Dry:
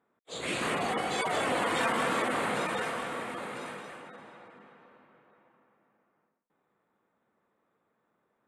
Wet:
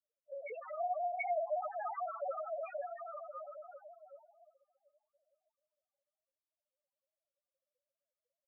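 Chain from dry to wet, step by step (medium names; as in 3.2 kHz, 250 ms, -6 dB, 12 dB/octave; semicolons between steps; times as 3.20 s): formants replaced by sine waves; loudest bins only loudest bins 2; level-controlled noise filter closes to 310 Hz, open at -36.5 dBFS; trim -2.5 dB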